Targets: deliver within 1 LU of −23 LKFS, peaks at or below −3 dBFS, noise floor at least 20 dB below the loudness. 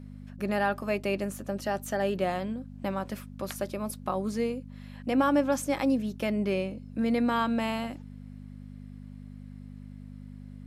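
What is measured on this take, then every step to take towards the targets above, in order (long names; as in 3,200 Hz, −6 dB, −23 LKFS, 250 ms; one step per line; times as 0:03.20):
mains hum 50 Hz; hum harmonics up to 250 Hz; level of the hum −42 dBFS; integrated loudness −30.0 LKFS; sample peak −14.0 dBFS; target loudness −23.0 LKFS
→ hum removal 50 Hz, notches 5
level +7 dB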